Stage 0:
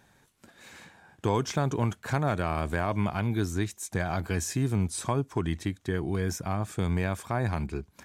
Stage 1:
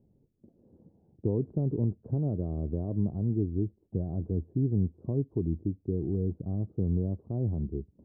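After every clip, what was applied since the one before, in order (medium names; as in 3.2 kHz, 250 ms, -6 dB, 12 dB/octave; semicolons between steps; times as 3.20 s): inverse Chebyshev low-pass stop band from 2 kHz, stop band 70 dB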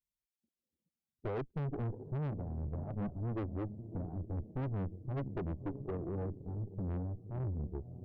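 expander on every frequency bin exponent 2; echo that smears into a reverb 600 ms, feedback 47%, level -15.5 dB; valve stage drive 40 dB, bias 0.75; trim +6 dB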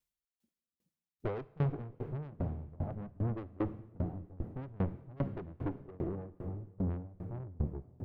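plate-style reverb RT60 4.3 s, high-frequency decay 1×, DRR 9 dB; sawtooth tremolo in dB decaying 2.5 Hz, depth 26 dB; trim +8 dB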